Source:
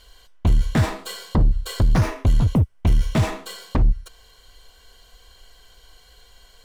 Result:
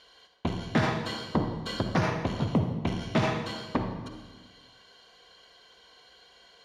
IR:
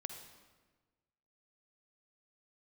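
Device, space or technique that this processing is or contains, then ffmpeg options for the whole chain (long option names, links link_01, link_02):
supermarket ceiling speaker: -filter_complex "[0:a]highpass=200,lowpass=5000,bandreject=frequency=7800:width=6.4[link_01];[1:a]atrim=start_sample=2205[link_02];[link_01][link_02]afir=irnorm=-1:irlink=0,volume=1.5dB"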